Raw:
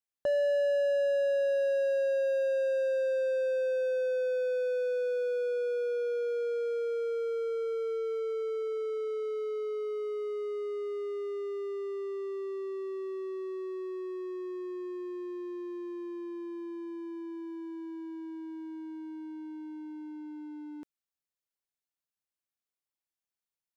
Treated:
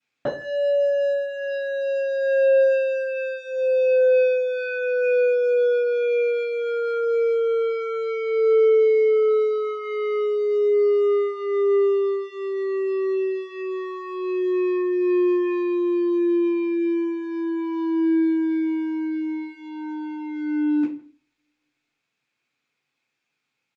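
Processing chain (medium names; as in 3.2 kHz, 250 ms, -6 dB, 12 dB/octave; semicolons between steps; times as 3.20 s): peaking EQ 2.5 kHz +7 dB 0.41 oct; compression 6:1, threshold -37 dBFS, peak gain reduction 11 dB; distance through air 71 m; speakerphone echo 160 ms, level -22 dB; reverberation RT60 0.40 s, pre-delay 3 ms, DRR -16 dB; trim +4 dB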